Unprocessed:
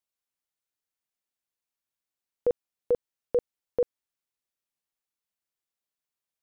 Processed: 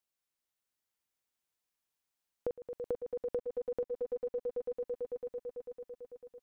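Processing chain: limiter -23 dBFS, peak gain reduction 5.5 dB; on a send: swelling echo 0.111 s, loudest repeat 5, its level -10.5 dB; on the sum: compressor 6:1, threshold -33 dBFS, peak gain reduction 11 dB

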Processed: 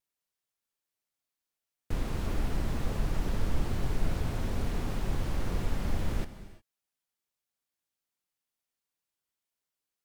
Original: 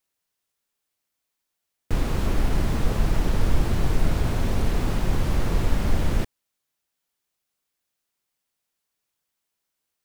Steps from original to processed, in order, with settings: wow and flutter 53 cents; non-linear reverb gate 0.38 s flat, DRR 11.5 dB; gain -8.5 dB

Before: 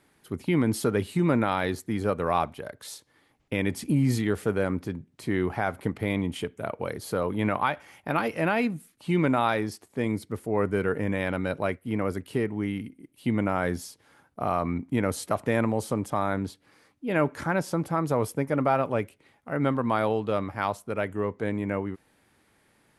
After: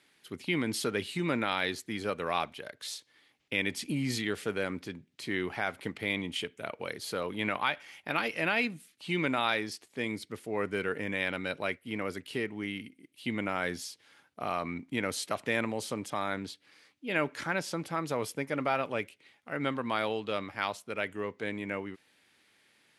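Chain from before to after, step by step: weighting filter D; gain -6.5 dB

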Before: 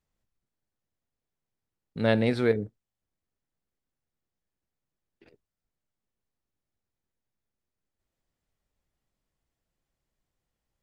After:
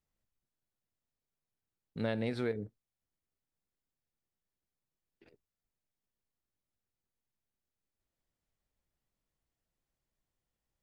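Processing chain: compressor, threshold -25 dBFS, peak gain reduction 7.5 dB; gain -5 dB

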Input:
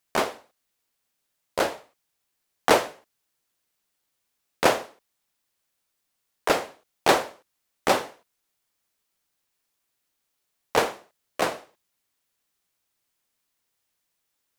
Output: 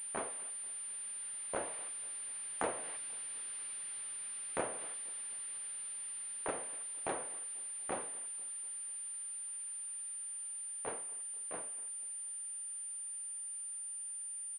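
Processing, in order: switching spikes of -20.5 dBFS; Doppler pass-by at 3.4, 9 m/s, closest 3.4 m; compressor 6:1, threshold -38 dBFS, peak gain reduction 17 dB; air absorption 350 m; on a send: feedback echo 0.244 s, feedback 52%, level -22 dB; on the sum: pulse-width modulation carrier 9200 Hz; gain +6 dB

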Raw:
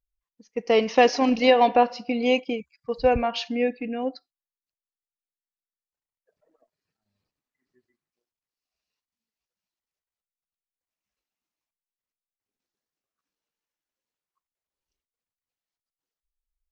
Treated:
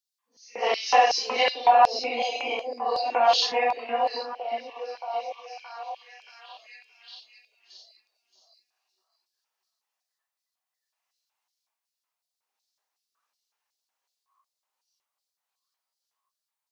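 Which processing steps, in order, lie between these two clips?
phase scrambler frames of 0.2 s; compressor, threshold -23 dBFS, peak gain reduction 11 dB; LFO high-pass square 2.7 Hz 840–4500 Hz; delay with a stepping band-pass 0.624 s, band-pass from 310 Hz, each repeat 0.7 oct, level -5 dB; gain +6.5 dB

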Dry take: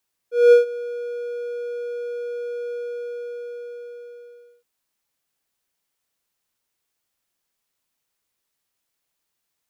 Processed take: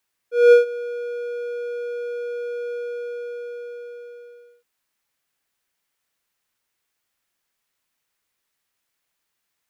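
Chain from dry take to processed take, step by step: bell 1800 Hz +5 dB 1.5 oct

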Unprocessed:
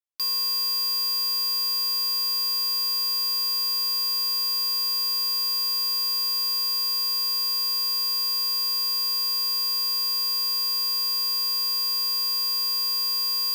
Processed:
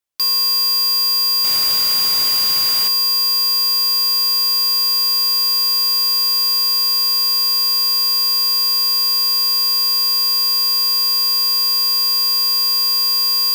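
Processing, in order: 1.44–2.88 requantised 6-bit, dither triangular; gain +9 dB

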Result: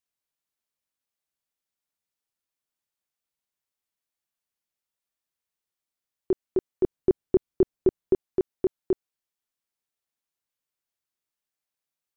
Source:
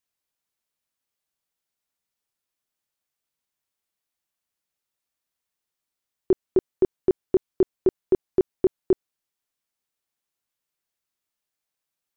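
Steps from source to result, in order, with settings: 6.84–8.14 low shelf 360 Hz +7.5 dB; gain -4.5 dB

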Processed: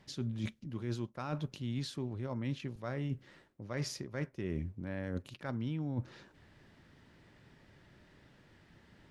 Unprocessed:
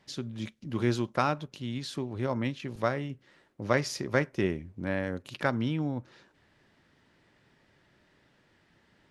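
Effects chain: reverse; compressor 12:1, threshold -38 dBFS, peak gain reduction 19.5 dB; reverse; low shelf 200 Hz +8.5 dB; gain +1 dB

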